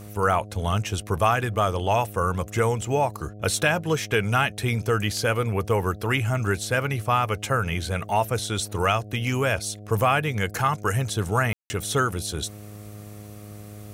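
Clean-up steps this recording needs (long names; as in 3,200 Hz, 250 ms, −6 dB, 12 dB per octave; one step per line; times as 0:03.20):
hum removal 104.3 Hz, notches 7
ambience match 0:11.53–0:11.70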